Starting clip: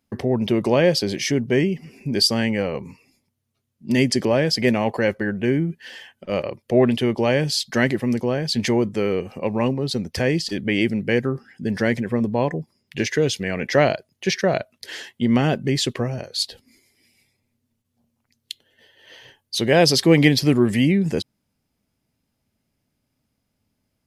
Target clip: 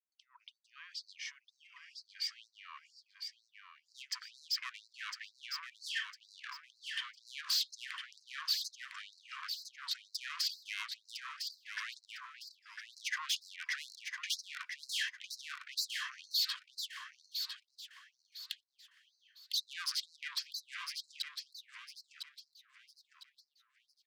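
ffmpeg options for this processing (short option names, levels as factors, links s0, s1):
-filter_complex "[0:a]lowpass=f=8100:w=0.5412,lowpass=f=8100:w=1.3066,aemphasis=mode=reproduction:type=bsi,agate=range=0.0447:threshold=0.01:ratio=16:detection=peak,equalizer=f=65:w=0.83:g=-8,areverse,acompressor=threshold=0.0447:ratio=10,areverse,alimiter=level_in=1.33:limit=0.0631:level=0:latency=1:release=142,volume=0.75,dynaudnorm=f=790:g=9:m=5.01,asoftclip=type=tanh:threshold=0.0562,asplit=2[s0][s1];[s1]aecho=0:1:1005|2010|3015|4020:0.473|0.147|0.0455|0.0141[s2];[s0][s2]amix=inputs=2:normalize=0,afftfilt=real='re*gte(b*sr/1024,940*pow(4000/940,0.5+0.5*sin(2*PI*2.1*pts/sr)))':imag='im*gte(b*sr/1024,940*pow(4000/940,0.5+0.5*sin(2*PI*2.1*pts/sr)))':win_size=1024:overlap=0.75,volume=0.75"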